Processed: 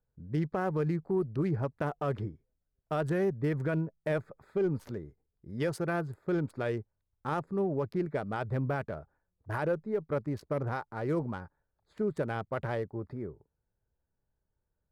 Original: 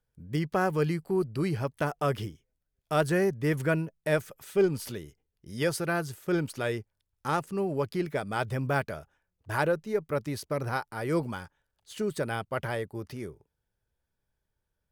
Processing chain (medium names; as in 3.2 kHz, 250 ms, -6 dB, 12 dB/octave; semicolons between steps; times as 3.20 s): local Wiener filter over 15 samples; treble shelf 3.1 kHz -10.5 dB; peak limiter -22 dBFS, peak gain reduction 8 dB